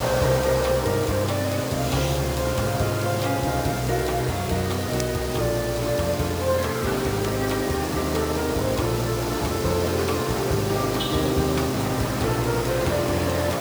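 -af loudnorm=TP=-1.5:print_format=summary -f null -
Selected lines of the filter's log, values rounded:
Input Integrated:    -23.7 LUFS
Input True Peak:      -7.9 dBTP
Input LRA:             1.1 LU
Input Threshold:     -33.7 LUFS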